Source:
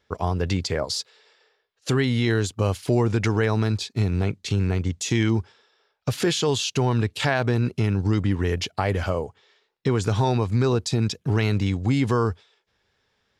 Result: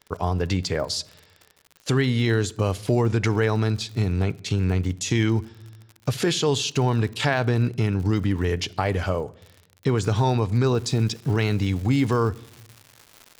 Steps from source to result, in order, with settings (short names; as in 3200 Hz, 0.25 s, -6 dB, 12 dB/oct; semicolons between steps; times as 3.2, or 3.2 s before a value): reverb RT60 0.85 s, pre-delay 7 ms, DRR 17 dB; crackle 57/s -34 dBFS, from 10.77 s 310/s